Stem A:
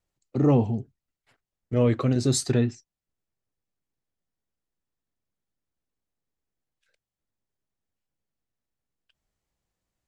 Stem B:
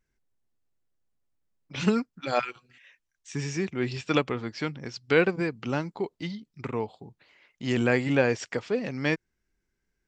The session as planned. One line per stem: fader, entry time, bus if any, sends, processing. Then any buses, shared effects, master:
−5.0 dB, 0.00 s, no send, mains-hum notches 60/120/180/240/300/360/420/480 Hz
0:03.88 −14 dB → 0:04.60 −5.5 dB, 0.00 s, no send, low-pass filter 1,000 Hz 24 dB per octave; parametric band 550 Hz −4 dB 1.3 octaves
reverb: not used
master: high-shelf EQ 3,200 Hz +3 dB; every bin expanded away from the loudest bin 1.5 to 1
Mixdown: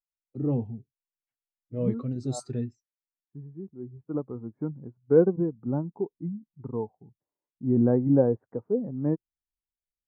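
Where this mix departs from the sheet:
stem A: missing mains-hum notches 60/120/180/240/300/360/420/480 Hz
stem B −14.0 dB → −3.0 dB

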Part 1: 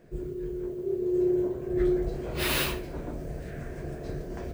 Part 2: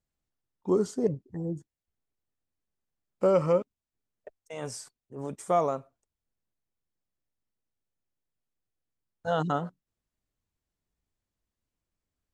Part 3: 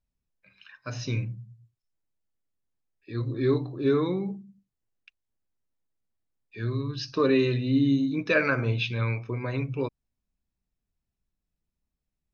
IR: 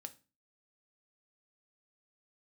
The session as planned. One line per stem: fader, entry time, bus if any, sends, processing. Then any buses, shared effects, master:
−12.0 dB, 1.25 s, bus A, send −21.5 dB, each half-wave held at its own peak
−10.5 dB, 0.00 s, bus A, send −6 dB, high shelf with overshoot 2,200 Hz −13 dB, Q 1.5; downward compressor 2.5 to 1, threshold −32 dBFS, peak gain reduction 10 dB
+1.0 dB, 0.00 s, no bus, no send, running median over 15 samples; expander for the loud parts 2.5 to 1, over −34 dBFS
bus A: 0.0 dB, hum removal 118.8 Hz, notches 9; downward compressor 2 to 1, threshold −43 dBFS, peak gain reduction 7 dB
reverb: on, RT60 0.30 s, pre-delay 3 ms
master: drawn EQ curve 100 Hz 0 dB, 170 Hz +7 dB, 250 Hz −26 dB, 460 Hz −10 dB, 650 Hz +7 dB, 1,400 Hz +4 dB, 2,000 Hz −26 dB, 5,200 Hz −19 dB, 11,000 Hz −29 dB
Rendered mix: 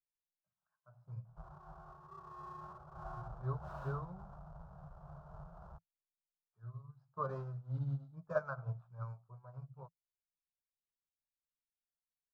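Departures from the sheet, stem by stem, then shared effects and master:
stem 1 −12.0 dB → −22.5 dB
stem 2: muted
stem 3 +1.0 dB → −8.0 dB

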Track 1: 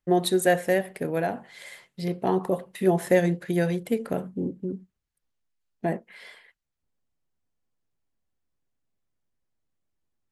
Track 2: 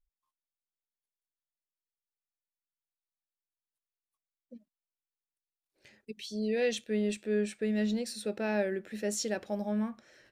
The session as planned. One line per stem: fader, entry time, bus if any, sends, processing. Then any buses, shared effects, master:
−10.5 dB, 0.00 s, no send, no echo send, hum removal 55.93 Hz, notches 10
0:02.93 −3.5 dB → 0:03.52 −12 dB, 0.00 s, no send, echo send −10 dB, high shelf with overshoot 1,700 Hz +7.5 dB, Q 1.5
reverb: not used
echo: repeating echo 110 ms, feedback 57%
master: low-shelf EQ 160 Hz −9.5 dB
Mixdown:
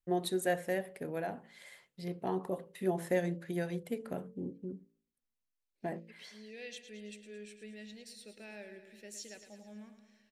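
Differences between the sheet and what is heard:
stem 2 −3.5 dB → −10.5 dB
master: missing low-shelf EQ 160 Hz −9.5 dB

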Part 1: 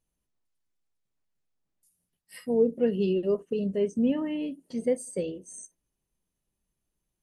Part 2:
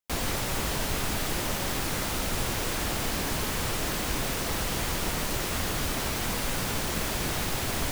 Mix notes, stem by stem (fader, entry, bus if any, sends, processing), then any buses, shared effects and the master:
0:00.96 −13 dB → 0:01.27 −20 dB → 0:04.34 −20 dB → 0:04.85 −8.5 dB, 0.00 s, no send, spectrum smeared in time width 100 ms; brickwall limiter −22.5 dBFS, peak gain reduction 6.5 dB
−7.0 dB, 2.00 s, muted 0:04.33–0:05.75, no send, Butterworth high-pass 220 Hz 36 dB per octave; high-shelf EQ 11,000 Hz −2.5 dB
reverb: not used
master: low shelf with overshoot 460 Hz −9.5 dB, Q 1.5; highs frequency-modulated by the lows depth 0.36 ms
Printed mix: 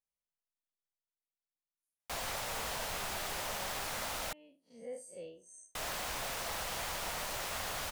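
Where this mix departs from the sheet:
stem 2: missing Butterworth high-pass 220 Hz 36 dB per octave
master: missing highs frequency-modulated by the lows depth 0.36 ms

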